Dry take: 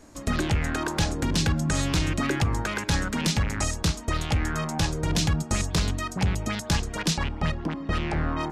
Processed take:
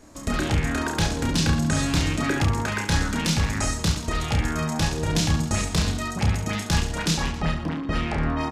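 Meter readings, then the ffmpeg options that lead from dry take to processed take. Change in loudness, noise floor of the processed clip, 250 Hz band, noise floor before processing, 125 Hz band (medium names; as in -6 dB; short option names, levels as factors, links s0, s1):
+2.0 dB, -33 dBFS, +2.5 dB, -39 dBFS, +2.0 dB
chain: -af "aecho=1:1:30|69|119.7|185.6|271.3:0.631|0.398|0.251|0.158|0.1"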